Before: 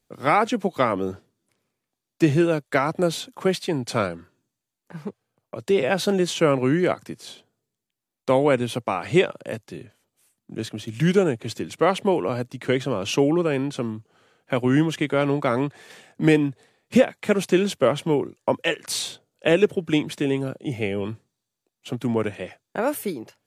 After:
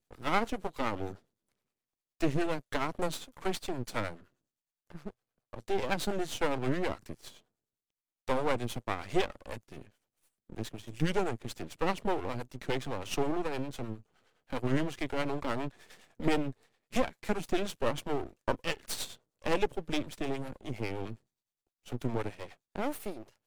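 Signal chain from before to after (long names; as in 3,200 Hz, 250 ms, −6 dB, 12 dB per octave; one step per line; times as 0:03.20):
two-band tremolo in antiphase 9.7 Hz, depth 70%, crossover 430 Hz
half-wave rectification
level −3 dB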